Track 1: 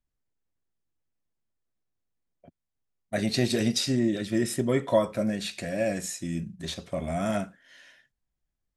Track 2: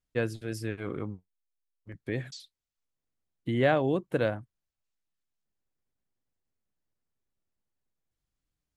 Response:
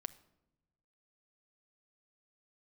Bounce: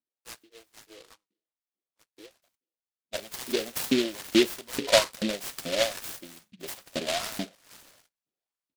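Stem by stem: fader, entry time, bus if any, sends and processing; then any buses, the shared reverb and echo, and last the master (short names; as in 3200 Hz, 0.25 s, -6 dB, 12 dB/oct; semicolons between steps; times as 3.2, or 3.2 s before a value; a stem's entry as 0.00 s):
3.24 s -10.5 dB -> 3.99 s -3 dB, 0.00 s, no send, low shelf 340 Hz +6 dB
-15.0 dB, 0.10 s, send -13 dB, three-band isolator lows -12 dB, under 380 Hz, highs -18 dB, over 3200 Hz; comb 6.2 ms, depth 47%; auto duck -12 dB, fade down 0.45 s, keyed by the first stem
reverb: on, pre-delay 6 ms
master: LFO high-pass saw up 2.3 Hz 260–2800 Hz; noise-modulated delay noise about 3000 Hz, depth 0.18 ms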